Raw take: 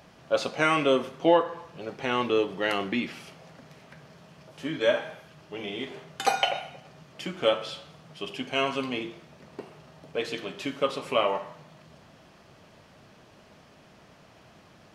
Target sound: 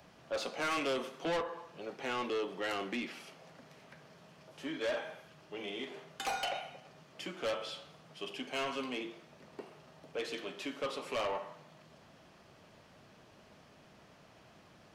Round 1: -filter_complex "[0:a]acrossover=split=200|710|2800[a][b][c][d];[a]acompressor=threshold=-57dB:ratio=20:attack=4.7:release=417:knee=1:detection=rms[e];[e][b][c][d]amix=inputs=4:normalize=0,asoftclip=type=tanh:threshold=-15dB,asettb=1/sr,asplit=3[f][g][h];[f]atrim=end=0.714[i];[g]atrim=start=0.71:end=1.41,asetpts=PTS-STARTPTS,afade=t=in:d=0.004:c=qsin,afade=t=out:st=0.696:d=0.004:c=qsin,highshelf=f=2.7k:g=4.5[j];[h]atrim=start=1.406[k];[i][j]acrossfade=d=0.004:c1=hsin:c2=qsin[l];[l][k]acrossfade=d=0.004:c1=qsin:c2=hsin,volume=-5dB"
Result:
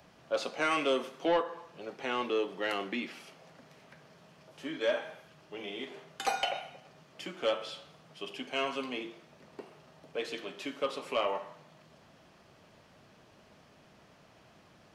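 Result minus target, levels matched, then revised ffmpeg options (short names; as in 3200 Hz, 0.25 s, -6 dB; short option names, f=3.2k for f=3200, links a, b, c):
soft clip: distortion -10 dB
-filter_complex "[0:a]acrossover=split=200|710|2800[a][b][c][d];[a]acompressor=threshold=-57dB:ratio=20:attack=4.7:release=417:knee=1:detection=rms[e];[e][b][c][d]amix=inputs=4:normalize=0,asoftclip=type=tanh:threshold=-25.5dB,asettb=1/sr,asplit=3[f][g][h];[f]atrim=end=0.714[i];[g]atrim=start=0.71:end=1.41,asetpts=PTS-STARTPTS,afade=t=in:d=0.004:c=qsin,afade=t=out:st=0.696:d=0.004:c=qsin,highshelf=f=2.7k:g=4.5[j];[h]atrim=start=1.406[k];[i][j]acrossfade=d=0.004:c1=hsin:c2=qsin[l];[l][k]acrossfade=d=0.004:c1=qsin:c2=hsin,volume=-5dB"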